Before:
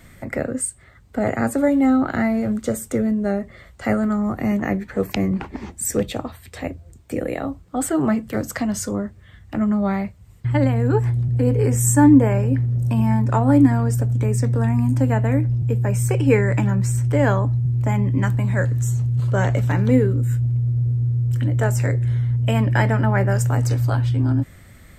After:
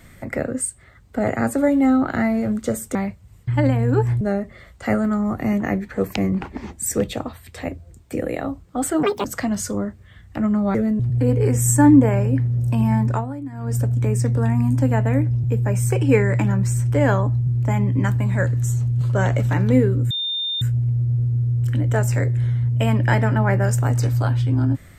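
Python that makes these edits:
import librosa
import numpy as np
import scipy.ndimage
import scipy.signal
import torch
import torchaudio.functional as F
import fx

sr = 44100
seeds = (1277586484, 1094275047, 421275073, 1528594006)

y = fx.edit(x, sr, fx.swap(start_s=2.95, length_s=0.25, other_s=9.92, other_length_s=1.26),
    fx.speed_span(start_s=8.02, length_s=0.4, speed=1.86),
    fx.fade_down_up(start_s=13.29, length_s=0.66, db=-18.5, fade_s=0.29, curve='qua'),
    fx.insert_tone(at_s=20.29, length_s=0.51, hz=3620.0, db=-21.5), tone=tone)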